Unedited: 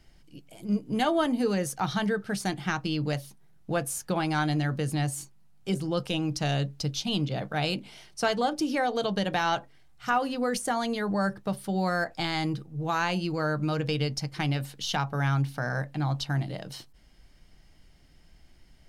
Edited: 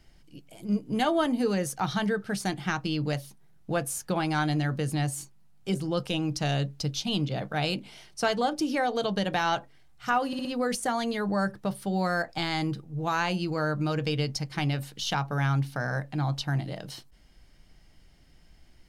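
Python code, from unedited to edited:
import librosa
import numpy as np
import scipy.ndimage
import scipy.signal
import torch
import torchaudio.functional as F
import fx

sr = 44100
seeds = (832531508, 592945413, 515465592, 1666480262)

y = fx.edit(x, sr, fx.stutter(start_s=10.27, slice_s=0.06, count=4), tone=tone)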